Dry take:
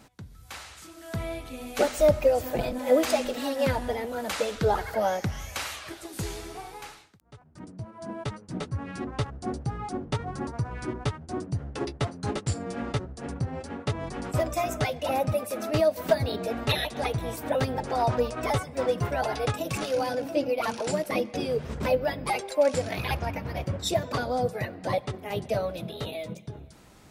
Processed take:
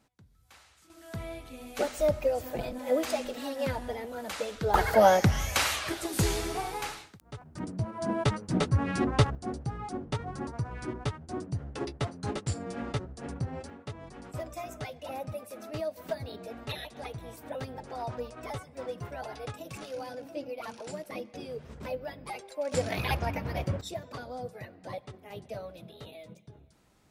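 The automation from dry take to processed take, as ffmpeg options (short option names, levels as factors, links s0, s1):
-af "asetnsamples=n=441:p=0,asendcmd='0.9 volume volume -6dB;4.74 volume volume 6.5dB;9.35 volume volume -3.5dB;13.7 volume volume -11.5dB;22.72 volume volume -0.5dB;23.81 volume volume -12dB',volume=0.178"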